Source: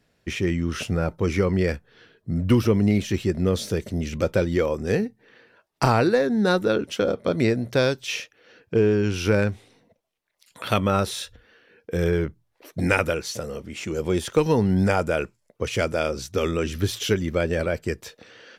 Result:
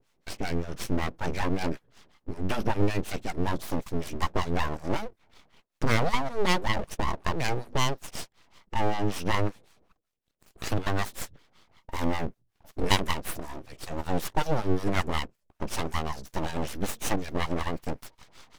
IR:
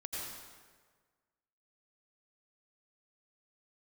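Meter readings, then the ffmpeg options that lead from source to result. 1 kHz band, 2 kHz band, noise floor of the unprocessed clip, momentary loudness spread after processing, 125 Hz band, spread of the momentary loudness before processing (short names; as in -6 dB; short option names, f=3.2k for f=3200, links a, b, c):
-1.0 dB, -5.0 dB, -72 dBFS, 13 LU, -7.5 dB, 12 LU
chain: -filter_complex "[0:a]acrossover=split=420[a][b];[a]aeval=exprs='val(0)*(1-1/2+1/2*cos(2*PI*5.3*n/s))':c=same[c];[b]aeval=exprs='val(0)*(1-1/2-1/2*cos(2*PI*5.3*n/s))':c=same[d];[c][d]amix=inputs=2:normalize=0,aeval=exprs='abs(val(0))':c=same,volume=2dB"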